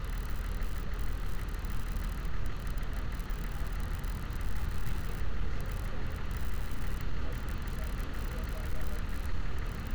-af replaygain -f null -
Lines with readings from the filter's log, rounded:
track_gain = +27.5 dB
track_peak = 0.052